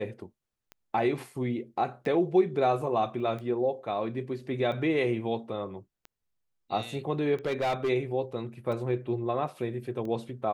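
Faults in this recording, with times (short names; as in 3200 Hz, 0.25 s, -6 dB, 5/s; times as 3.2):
tick 45 rpm -28 dBFS
3.2 gap 2.1 ms
7.46–7.9 clipped -24 dBFS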